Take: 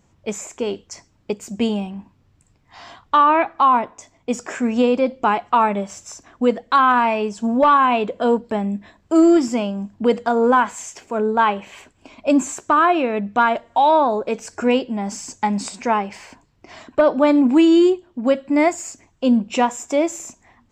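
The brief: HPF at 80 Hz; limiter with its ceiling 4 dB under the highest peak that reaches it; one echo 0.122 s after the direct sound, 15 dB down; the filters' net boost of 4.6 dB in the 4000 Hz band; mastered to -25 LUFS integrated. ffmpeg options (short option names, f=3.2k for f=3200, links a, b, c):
-af "highpass=80,equalizer=f=4k:t=o:g=6.5,alimiter=limit=-9dB:level=0:latency=1,aecho=1:1:122:0.178,volume=-5dB"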